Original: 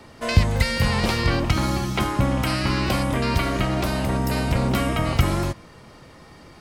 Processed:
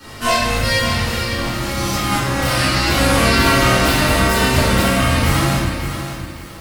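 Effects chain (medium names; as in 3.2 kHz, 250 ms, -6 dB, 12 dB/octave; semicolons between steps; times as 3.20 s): formants flattened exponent 0.6; Doppler pass-by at 1.49 s, 6 m/s, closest 3.5 m; compressor with a negative ratio -33 dBFS, ratio -1; reverberation RT60 1.4 s, pre-delay 4 ms, DRR -12.5 dB; bit-crushed delay 562 ms, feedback 35%, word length 6-bit, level -9 dB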